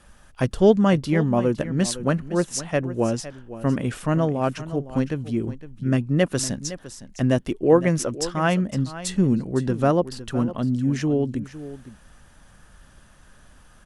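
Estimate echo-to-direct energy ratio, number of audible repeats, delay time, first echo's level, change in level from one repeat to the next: -14.5 dB, 1, 510 ms, -14.5 dB, no regular repeats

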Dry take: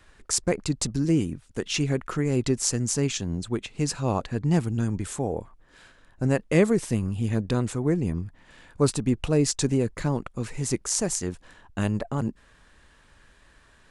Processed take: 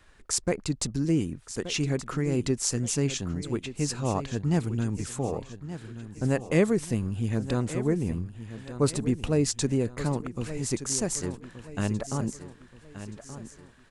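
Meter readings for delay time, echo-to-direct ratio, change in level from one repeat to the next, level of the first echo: 1176 ms, -11.5 dB, -8.0 dB, -12.5 dB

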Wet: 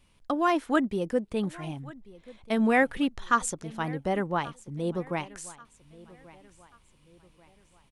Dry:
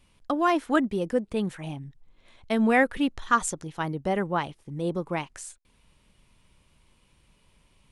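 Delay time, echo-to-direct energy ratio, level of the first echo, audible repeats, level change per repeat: 1135 ms, -20.0 dB, -21.0 dB, 2, -8.0 dB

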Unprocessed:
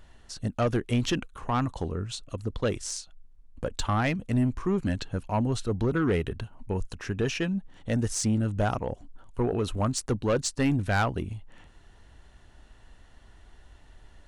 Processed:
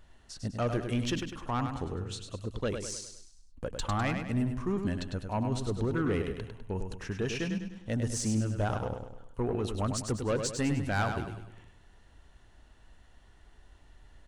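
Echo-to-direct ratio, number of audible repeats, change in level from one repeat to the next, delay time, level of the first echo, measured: -5.5 dB, 5, -7.0 dB, 101 ms, -6.5 dB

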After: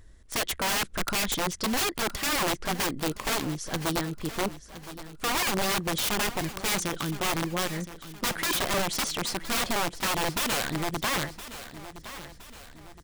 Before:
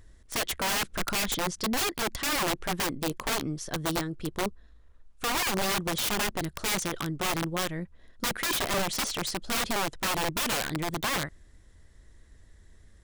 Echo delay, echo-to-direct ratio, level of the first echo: 1017 ms, -13.0 dB, -14.0 dB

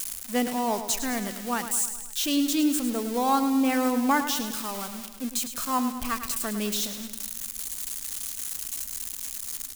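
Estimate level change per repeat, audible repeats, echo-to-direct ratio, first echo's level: -4.5 dB, 5, -8.0 dB, -10.0 dB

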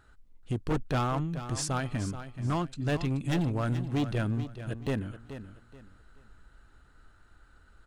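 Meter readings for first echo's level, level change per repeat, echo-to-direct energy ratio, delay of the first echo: -11.5 dB, -11.0 dB, -11.0 dB, 429 ms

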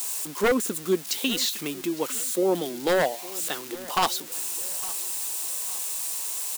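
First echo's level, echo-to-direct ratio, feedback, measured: -19.5 dB, -18.5 dB, 41%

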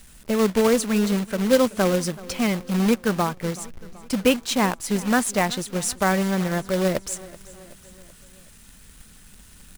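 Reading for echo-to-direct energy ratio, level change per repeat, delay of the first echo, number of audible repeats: -18.5 dB, -5.0 dB, 379 ms, 3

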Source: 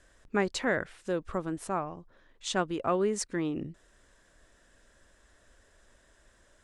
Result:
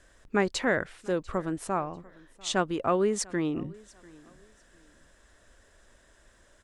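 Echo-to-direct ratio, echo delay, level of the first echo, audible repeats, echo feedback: -23.5 dB, 694 ms, -24.0 dB, 2, 29%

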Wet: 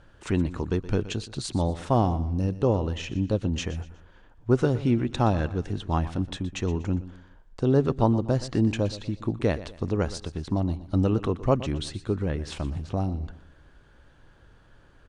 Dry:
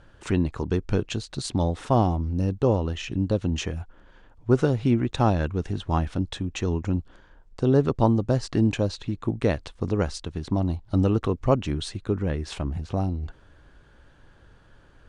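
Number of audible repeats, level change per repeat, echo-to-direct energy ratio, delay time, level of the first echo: 3, -8.5 dB, -15.0 dB, 121 ms, -15.5 dB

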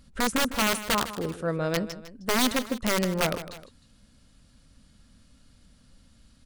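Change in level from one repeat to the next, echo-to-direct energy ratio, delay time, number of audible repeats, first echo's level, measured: -6.0 dB, -12.5 dB, 155 ms, 2, -13.5 dB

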